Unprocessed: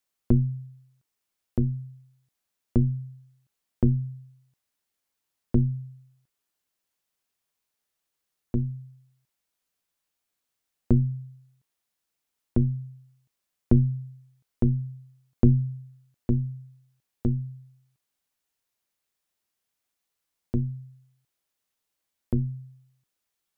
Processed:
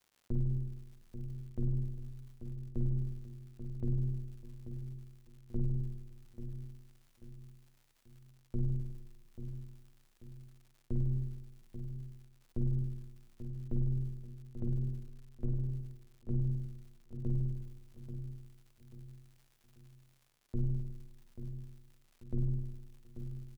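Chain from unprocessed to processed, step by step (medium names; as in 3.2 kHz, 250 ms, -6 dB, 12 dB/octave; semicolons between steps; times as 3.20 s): bass shelf 97 Hz +11.5 dB; reverse; compression 12:1, threshold -32 dBFS, peak gain reduction 27 dB; reverse; spring tank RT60 1.3 s, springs 51 ms, chirp 50 ms, DRR 3 dB; formant shift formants +2 st; on a send: feedback delay 837 ms, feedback 39%, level -10 dB; on the sum: crackle 170 per s -56 dBFS; trim +1.5 dB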